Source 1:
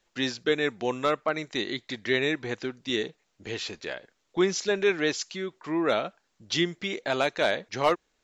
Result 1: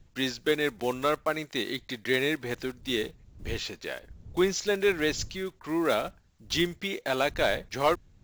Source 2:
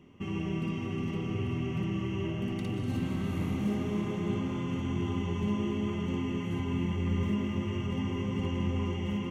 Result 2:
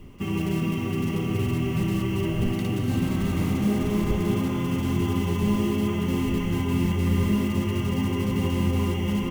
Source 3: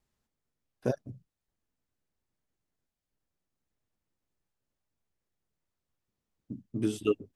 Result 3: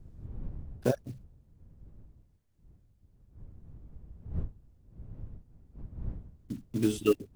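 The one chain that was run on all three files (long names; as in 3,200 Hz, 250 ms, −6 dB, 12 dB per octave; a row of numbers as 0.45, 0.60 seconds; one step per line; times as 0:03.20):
one scale factor per block 5 bits
wind on the microphone 88 Hz −46 dBFS
normalise the peak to −12 dBFS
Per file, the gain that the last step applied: −1.0, +7.0, +2.5 decibels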